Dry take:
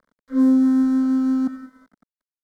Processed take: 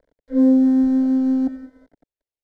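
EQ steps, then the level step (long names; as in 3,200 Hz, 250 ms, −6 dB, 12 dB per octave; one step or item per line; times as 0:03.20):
low-pass filter 1,300 Hz 6 dB per octave
low-shelf EQ 350 Hz +4 dB
phaser with its sweep stopped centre 500 Hz, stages 4
+8.0 dB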